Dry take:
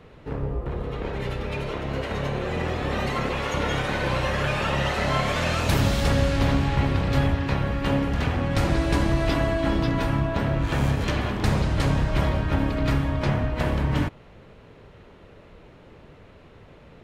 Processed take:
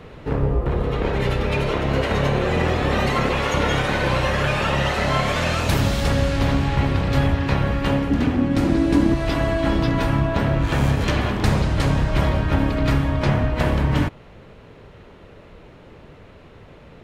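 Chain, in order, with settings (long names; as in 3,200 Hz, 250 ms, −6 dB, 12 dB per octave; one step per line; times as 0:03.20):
0:08.10–0:09.14: parametric band 270 Hz +14.5 dB 0.87 octaves
speech leveller within 5 dB 0.5 s
level +3 dB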